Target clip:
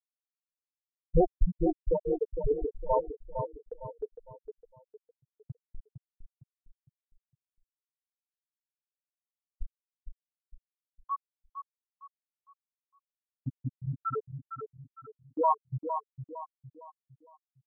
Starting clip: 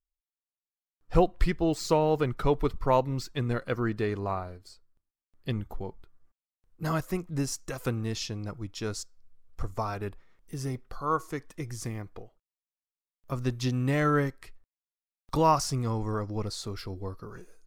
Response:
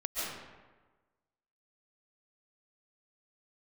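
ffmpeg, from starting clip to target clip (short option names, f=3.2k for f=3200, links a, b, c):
-filter_complex "[0:a]afftfilt=real='re*gte(hypot(re,im),0.501)':imag='im*gte(hypot(re,im),0.501)':win_size=1024:overlap=0.75,agate=range=-18dB:threshold=-50dB:ratio=16:detection=peak,asplit=2[a][b];[b]adelay=458,lowpass=f=2.6k:p=1,volume=-7.5dB,asplit=2[c][d];[d]adelay=458,lowpass=f=2.6k:p=1,volume=0.39,asplit=2[e][f];[f]adelay=458,lowpass=f=2.6k:p=1,volume=0.39,asplit=2[g][h];[h]adelay=458,lowpass=f=2.6k:p=1,volume=0.39[i];[a][c][e][g][i]amix=inputs=5:normalize=0"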